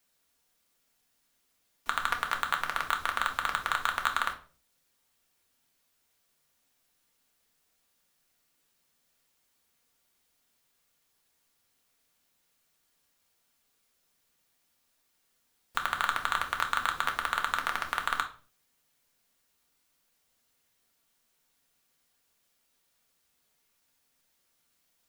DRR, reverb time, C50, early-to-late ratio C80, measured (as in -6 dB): 3.0 dB, 0.45 s, 12.0 dB, 17.5 dB